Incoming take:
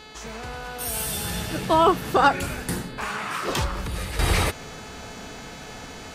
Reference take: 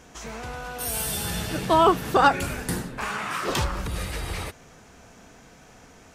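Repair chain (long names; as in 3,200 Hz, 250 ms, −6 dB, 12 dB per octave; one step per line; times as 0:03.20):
hum removal 431.1 Hz, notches 11
level correction −10.5 dB, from 0:04.19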